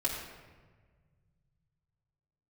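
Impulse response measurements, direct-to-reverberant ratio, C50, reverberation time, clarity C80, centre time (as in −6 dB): −6.0 dB, 2.5 dB, 1.5 s, 4.0 dB, 57 ms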